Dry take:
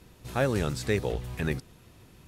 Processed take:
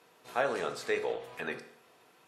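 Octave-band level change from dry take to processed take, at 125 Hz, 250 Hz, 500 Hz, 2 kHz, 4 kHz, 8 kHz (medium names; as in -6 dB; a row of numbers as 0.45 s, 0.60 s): -23.5 dB, -12.5 dB, -2.5 dB, -1.0 dB, -4.0 dB, -7.5 dB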